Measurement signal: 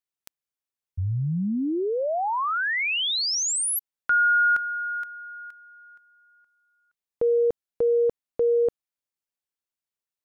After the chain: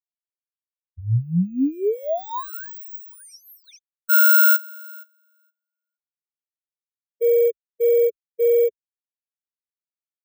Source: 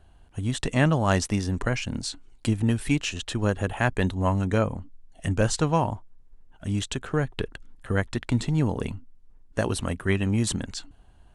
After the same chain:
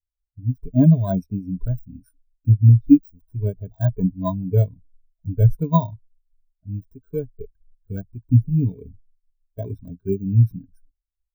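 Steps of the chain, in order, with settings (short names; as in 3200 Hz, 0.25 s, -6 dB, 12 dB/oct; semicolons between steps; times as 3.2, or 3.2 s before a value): FFT order left unsorted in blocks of 16 samples; ripple EQ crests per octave 1.6, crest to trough 9 dB; spectral expander 2.5:1; gain +3.5 dB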